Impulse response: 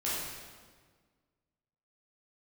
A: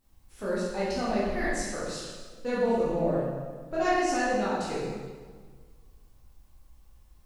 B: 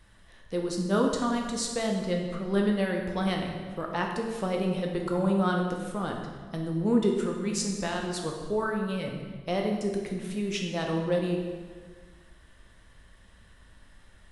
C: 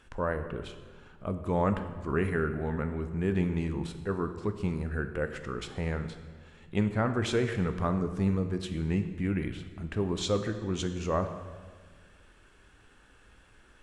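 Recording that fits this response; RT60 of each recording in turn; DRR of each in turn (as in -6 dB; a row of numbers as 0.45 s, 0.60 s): A; 1.6 s, 1.6 s, 1.6 s; -9.0 dB, 1.0 dB, 8.0 dB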